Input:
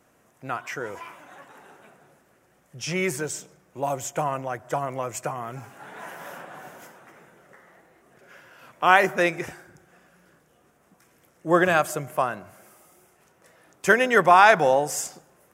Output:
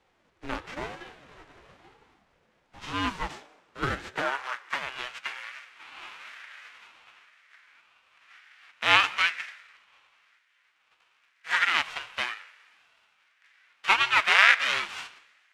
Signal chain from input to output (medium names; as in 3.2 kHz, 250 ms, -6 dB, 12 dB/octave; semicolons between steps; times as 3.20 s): formants flattened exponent 0.3; low-pass 2.8 kHz 12 dB/octave; Schroeder reverb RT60 1.4 s, combs from 29 ms, DRR 19 dB; high-pass sweep 100 Hz -> 1.9 kHz, 1.07–5.03 s; ring modulator with a swept carrier 400 Hz, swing 65%, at 1 Hz